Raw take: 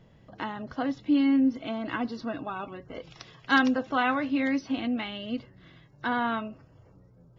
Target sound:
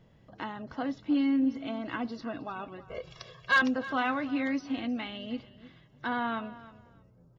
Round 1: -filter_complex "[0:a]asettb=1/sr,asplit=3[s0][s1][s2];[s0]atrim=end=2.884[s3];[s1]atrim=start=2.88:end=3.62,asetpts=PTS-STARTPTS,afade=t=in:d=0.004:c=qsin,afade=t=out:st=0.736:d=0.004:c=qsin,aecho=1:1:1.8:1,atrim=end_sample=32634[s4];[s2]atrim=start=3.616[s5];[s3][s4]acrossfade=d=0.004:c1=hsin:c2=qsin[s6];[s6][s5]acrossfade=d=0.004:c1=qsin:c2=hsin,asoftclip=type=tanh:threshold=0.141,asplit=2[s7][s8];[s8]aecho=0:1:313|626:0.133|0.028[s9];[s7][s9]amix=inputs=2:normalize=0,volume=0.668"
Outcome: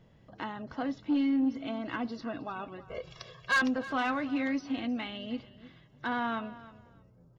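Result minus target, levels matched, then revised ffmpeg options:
saturation: distortion +10 dB
-filter_complex "[0:a]asettb=1/sr,asplit=3[s0][s1][s2];[s0]atrim=end=2.884[s3];[s1]atrim=start=2.88:end=3.62,asetpts=PTS-STARTPTS,afade=t=in:d=0.004:c=qsin,afade=t=out:st=0.736:d=0.004:c=qsin,aecho=1:1:1.8:1,atrim=end_sample=32634[s4];[s2]atrim=start=3.616[s5];[s3][s4]acrossfade=d=0.004:c1=hsin:c2=qsin[s6];[s6][s5]acrossfade=d=0.004:c1=qsin:c2=hsin,asoftclip=type=tanh:threshold=0.335,asplit=2[s7][s8];[s8]aecho=0:1:313|626:0.133|0.028[s9];[s7][s9]amix=inputs=2:normalize=0,volume=0.668"

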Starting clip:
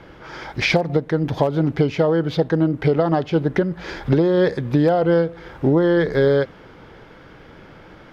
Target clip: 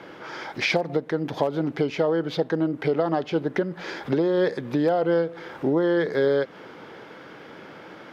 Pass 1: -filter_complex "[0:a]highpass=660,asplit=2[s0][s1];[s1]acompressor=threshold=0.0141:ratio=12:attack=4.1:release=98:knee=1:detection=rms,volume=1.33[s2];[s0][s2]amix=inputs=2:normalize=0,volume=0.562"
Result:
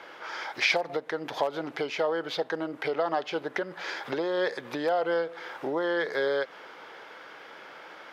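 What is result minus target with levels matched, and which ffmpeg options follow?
250 Hz band -6.0 dB
-filter_complex "[0:a]highpass=220,asplit=2[s0][s1];[s1]acompressor=threshold=0.0141:ratio=12:attack=4.1:release=98:knee=1:detection=rms,volume=1.33[s2];[s0][s2]amix=inputs=2:normalize=0,volume=0.562"

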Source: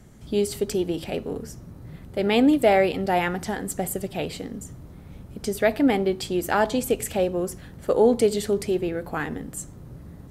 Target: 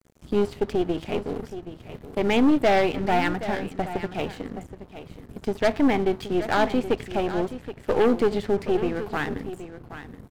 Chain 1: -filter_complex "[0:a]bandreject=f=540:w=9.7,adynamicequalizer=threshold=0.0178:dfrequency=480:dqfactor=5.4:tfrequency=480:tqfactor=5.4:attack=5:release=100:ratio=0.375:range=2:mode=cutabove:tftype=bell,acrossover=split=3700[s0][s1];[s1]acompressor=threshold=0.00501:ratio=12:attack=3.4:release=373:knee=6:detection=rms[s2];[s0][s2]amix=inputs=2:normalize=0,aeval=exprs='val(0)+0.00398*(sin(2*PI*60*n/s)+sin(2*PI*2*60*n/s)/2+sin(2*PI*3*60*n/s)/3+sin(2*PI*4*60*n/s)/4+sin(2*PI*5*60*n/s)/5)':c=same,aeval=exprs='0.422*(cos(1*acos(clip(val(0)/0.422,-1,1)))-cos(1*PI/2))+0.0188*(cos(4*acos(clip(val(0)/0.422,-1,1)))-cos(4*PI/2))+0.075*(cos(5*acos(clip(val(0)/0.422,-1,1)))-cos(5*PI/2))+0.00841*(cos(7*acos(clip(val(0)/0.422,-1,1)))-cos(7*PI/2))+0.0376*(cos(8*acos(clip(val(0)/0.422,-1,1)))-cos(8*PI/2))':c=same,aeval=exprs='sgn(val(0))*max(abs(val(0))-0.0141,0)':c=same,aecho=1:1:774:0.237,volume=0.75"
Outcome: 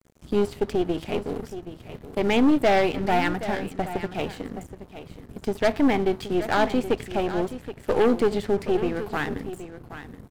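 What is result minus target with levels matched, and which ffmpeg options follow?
compression: peak gain reduction -7 dB
-filter_complex "[0:a]bandreject=f=540:w=9.7,adynamicequalizer=threshold=0.0178:dfrequency=480:dqfactor=5.4:tfrequency=480:tqfactor=5.4:attack=5:release=100:ratio=0.375:range=2:mode=cutabove:tftype=bell,acrossover=split=3700[s0][s1];[s1]acompressor=threshold=0.00211:ratio=12:attack=3.4:release=373:knee=6:detection=rms[s2];[s0][s2]amix=inputs=2:normalize=0,aeval=exprs='val(0)+0.00398*(sin(2*PI*60*n/s)+sin(2*PI*2*60*n/s)/2+sin(2*PI*3*60*n/s)/3+sin(2*PI*4*60*n/s)/4+sin(2*PI*5*60*n/s)/5)':c=same,aeval=exprs='0.422*(cos(1*acos(clip(val(0)/0.422,-1,1)))-cos(1*PI/2))+0.0188*(cos(4*acos(clip(val(0)/0.422,-1,1)))-cos(4*PI/2))+0.075*(cos(5*acos(clip(val(0)/0.422,-1,1)))-cos(5*PI/2))+0.00841*(cos(7*acos(clip(val(0)/0.422,-1,1)))-cos(7*PI/2))+0.0376*(cos(8*acos(clip(val(0)/0.422,-1,1)))-cos(8*PI/2))':c=same,aeval=exprs='sgn(val(0))*max(abs(val(0))-0.0141,0)':c=same,aecho=1:1:774:0.237,volume=0.75"

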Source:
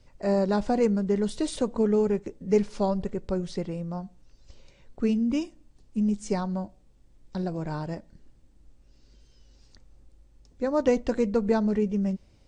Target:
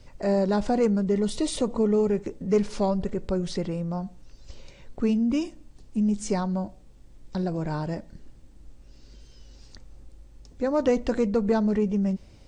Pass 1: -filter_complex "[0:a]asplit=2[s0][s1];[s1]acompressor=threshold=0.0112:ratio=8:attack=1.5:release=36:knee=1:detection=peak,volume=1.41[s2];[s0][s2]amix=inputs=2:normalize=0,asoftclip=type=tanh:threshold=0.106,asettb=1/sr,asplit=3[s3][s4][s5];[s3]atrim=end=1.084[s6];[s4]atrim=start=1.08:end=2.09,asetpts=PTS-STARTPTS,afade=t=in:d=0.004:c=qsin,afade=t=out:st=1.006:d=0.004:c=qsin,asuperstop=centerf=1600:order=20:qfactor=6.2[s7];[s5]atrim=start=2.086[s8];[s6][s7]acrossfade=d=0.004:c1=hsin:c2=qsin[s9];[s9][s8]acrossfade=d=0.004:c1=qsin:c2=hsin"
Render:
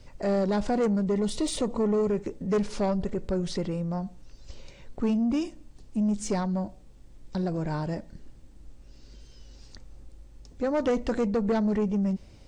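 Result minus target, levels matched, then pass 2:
saturation: distortion +13 dB
-filter_complex "[0:a]asplit=2[s0][s1];[s1]acompressor=threshold=0.0112:ratio=8:attack=1.5:release=36:knee=1:detection=peak,volume=1.41[s2];[s0][s2]amix=inputs=2:normalize=0,asoftclip=type=tanh:threshold=0.299,asettb=1/sr,asplit=3[s3][s4][s5];[s3]atrim=end=1.084[s6];[s4]atrim=start=1.08:end=2.09,asetpts=PTS-STARTPTS,afade=t=in:d=0.004:c=qsin,afade=t=out:st=1.006:d=0.004:c=qsin,asuperstop=centerf=1600:order=20:qfactor=6.2[s7];[s5]atrim=start=2.086[s8];[s6][s7]acrossfade=d=0.004:c1=hsin:c2=qsin[s9];[s9][s8]acrossfade=d=0.004:c1=qsin:c2=hsin"

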